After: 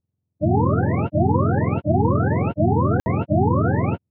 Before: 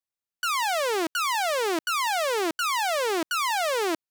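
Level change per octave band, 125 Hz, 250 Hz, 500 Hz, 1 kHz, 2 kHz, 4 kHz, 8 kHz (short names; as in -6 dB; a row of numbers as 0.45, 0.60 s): n/a, +14.0 dB, +4.5 dB, +1.0 dB, -6.5 dB, under -25 dB, under -30 dB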